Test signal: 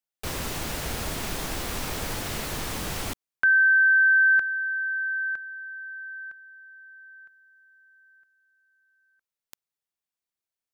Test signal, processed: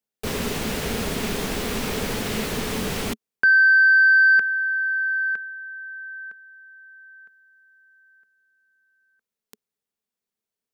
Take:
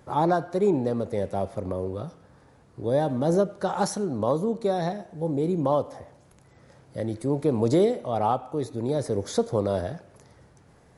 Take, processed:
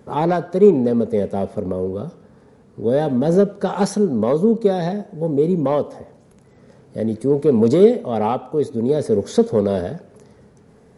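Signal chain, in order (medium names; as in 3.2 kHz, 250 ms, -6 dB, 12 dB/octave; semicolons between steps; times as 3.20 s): saturation -12.5 dBFS; dynamic bell 2.6 kHz, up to +6 dB, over -40 dBFS, Q 0.77; small resonant body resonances 220/420 Hz, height 12 dB, ringing for 40 ms; trim +1 dB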